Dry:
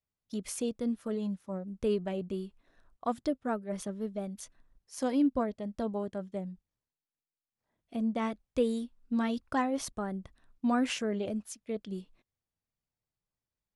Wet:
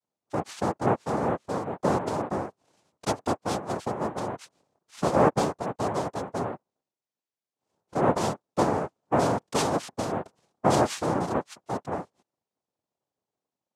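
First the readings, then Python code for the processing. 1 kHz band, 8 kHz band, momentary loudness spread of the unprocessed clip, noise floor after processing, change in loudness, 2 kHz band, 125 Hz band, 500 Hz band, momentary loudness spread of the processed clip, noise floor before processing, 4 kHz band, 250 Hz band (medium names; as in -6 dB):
+11.5 dB, +6.0 dB, 12 LU, under -85 dBFS, +6.0 dB, +6.5 dB, no reading, +7.5 dB, 11 LU, under -85 dBFS, +6.0 dB, +1.0 dB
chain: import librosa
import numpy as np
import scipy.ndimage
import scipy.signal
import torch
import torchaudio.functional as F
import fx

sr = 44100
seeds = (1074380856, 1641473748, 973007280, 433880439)

y = fx.low_shelf(x, sr, hz=320.0, db=10.5)
y = fx.noise_vocoder(y, sr, seeds[0], bands=2)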